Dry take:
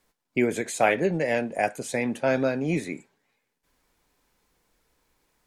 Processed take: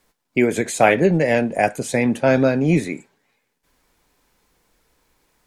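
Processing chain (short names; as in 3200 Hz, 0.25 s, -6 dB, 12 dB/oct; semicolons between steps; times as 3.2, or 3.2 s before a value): 0.58–2.88 low shelf 230 Hz +7 dB; gain +6 dB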